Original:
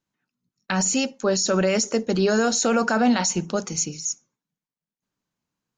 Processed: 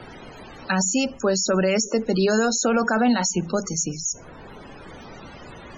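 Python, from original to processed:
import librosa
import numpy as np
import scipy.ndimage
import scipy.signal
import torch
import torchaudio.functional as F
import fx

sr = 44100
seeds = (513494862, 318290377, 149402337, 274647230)

y = fx.law_mismatch(x, sr, coded='mu')
y = fx.dmg_noise_colour(y, sr, seeds[0], colour='pink', level_db=-47.0)
y = fx.spec_topn(y, sr, count=64)
y = fx.band_squash(y, sr, depth_pct=40)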